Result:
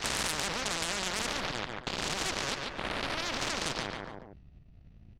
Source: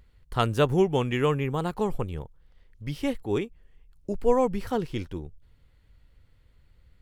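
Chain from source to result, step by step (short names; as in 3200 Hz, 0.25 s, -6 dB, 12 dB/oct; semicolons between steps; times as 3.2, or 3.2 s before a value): spectral swells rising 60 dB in 0.99 s; LPF 2700 Hz 12 dB/oct; low shelf 310 Hz +8.5 dB; gate with hold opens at -35 dBFS; transient shaper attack +12 dB, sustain -11 dB; limiter -22.5 dBFS, peak gain reduction 24.5 dB; added harmonics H 6 -17 dB, 7 -13 dB, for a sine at -20.5 dBFS; feedback echo 0.193 s, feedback 26%, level -12 dB; speed mistake 33 rpm record played at 45 rpm; spectral compressor 4:1; gain +4.5 dB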